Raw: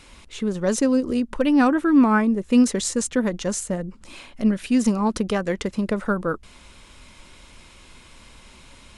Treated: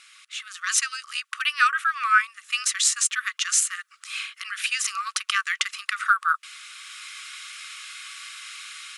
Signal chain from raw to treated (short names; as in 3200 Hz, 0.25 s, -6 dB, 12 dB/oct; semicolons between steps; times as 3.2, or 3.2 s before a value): dynamic EQ 2700 Hz, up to +4 dB, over -48 dBFS, Q 2.3; AGC gain up to 12 dB; brick-wall FIR high-pass 1100 Hz